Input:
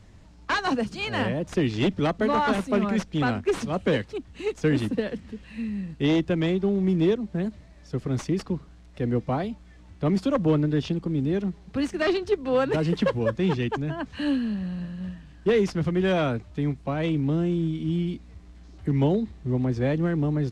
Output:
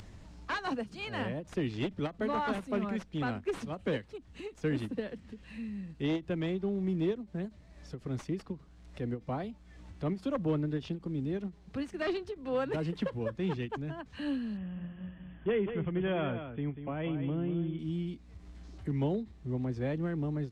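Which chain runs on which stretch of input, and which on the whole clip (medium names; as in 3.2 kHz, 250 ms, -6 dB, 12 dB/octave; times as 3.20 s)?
14.57–17.79 s: brick-wall FIR low-pass 3.5 kHz + delay 191 ms -9 dB
whole clip: upward compressor, threshold -31 dBFS; dynamic bell 6.1 kHz, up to -4 dB, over -50 dBFS, Q 1.1; endings held to a fixed fall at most 280 dB/s; trim -9 dB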